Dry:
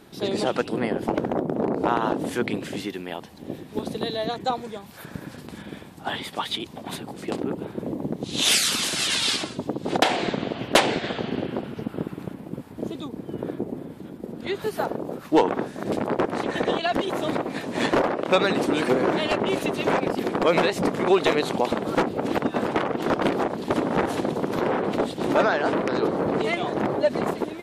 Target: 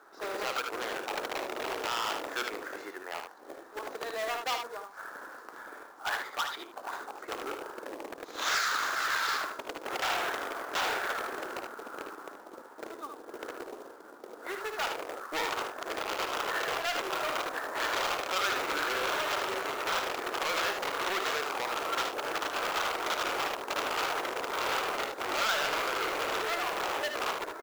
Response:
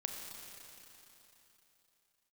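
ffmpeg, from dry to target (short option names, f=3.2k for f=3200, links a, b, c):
-filter_complex "[0:a]asplit=2[a][b];[b]adynamicsmooth=sensitivity=2.5:basefreq=1.8k,volume=-0.5dB[c];[a][c]amix=inputs=2:normalize=0,highpass=f=370:w=0.5412,highpass=f=370:w=1.3066,highshelf=f=2k:t=q:w=3:g=-13,alimiter=limit=-8.5dB:level=0:latency=1:release=41,aresample=16000,asoftclip=type=hard:threshold=-21dB,aresample=44100,tiltshelf=f=1.1k:g=-9.5,aecho=1:1:55|76:0.266|0.473,acrusher=bits=3:mode=log:mix=0:aa=0.000001,volume=-7.5dB"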